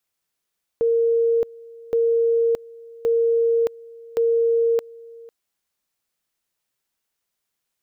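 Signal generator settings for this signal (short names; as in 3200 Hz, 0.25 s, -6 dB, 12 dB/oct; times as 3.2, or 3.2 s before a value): two-level tone 462 Hz -15.5 dBFS, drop 23 dB, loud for 0.62 s, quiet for 0.50 s, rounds 4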